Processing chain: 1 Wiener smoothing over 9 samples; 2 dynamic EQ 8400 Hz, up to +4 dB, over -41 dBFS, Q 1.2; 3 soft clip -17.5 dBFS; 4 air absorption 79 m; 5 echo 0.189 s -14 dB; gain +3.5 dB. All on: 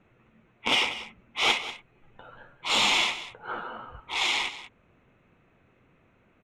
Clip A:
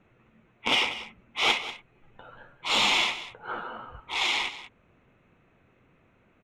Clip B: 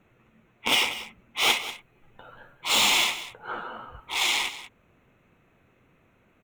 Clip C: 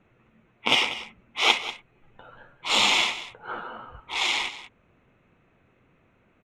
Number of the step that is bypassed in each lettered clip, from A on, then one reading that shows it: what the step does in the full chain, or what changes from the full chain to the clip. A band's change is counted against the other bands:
2, 8 kHz band -2.5 dB; 4, 8 kHz band +6.5 dB; 3, distortion -13 dB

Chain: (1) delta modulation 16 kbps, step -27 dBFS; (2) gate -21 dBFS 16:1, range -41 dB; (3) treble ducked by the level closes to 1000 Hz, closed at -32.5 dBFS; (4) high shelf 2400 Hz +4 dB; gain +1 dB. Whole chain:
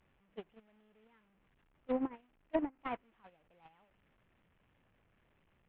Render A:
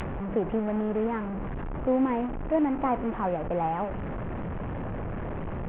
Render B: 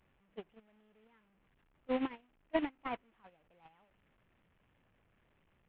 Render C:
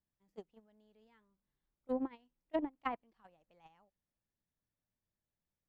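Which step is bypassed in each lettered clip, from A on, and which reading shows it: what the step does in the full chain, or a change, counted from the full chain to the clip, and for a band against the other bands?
2, momentary loudness spread change -10 LU; 3, 2 kHz band +5.0 dB; 1, 1 kHz band +2.5 dB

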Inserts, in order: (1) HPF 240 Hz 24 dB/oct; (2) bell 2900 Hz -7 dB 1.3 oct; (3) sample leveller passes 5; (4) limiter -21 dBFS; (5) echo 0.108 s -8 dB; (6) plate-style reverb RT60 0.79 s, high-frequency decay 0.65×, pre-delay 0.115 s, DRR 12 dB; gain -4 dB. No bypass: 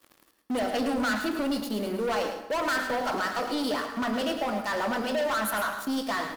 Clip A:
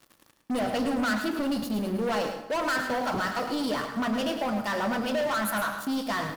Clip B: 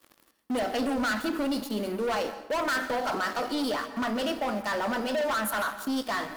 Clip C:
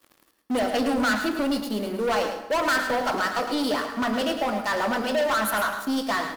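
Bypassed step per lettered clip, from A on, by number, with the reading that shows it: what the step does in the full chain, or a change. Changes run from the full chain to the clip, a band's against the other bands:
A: 1, 125 Hz band +6.0 dB; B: 5, echo-to-direct -6.5 dB to -12.0 dB; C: 4, mean gain reduction 2.5 dB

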